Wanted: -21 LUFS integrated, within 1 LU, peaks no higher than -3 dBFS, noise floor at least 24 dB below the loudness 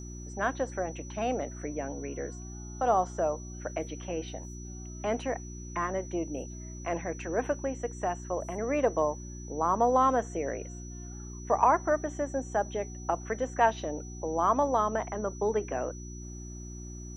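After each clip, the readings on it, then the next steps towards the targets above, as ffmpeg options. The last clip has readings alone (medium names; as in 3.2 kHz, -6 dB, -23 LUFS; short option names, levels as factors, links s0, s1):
hum 60 Hz; highest harmonic 360 Hz; hum level -39 dBFS; steady tone 5.9 kHz; tone level -48 dBFS; loudness -31.0 LUFS; peak level -9.0 dBFS; loudness target -21.0 LUFS
-> -af "bandreject=f=60:t=h:w=4,bandreject=f=120:t=h:w=4,bandreject=f=180:t=h:w=4,bandreject=f=240:t=h:w=4,bandreject=f=300:t=h:w=4,bandreject=f=360:t=h:w=4"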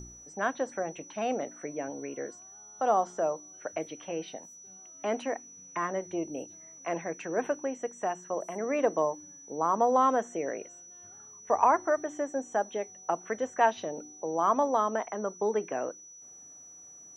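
hum not found; steady tone 5.9 kHz; tone level -48 dBFS
-> -af "bandreject=f=5900:w=30"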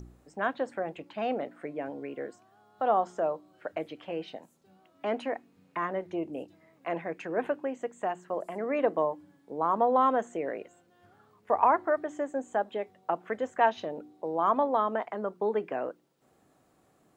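steady tone not found; loudness -31.0 LUFS; peak level -9.0 dBFS; loudness target -21.0 LUFS
-> -af "volume=3.16,alimiter=limit=0.708:level=0:latency=1"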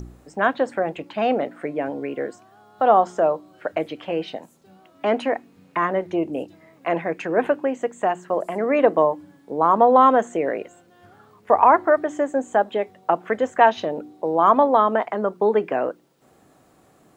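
loudness -21.0 LUFS; peak level -3.0 dBFS; noise floor -56 dBFS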